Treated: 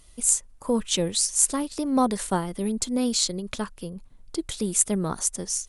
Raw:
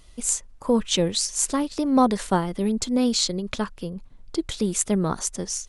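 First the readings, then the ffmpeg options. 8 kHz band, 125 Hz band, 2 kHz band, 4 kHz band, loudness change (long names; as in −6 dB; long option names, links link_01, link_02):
+2.5 dB, −3.5 dB, −3.0 dB, −2.0 dB, −1.0 dB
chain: -af "equalizer=frequency=10000:width=1.2:gain=10.5,volume=-3.5dB"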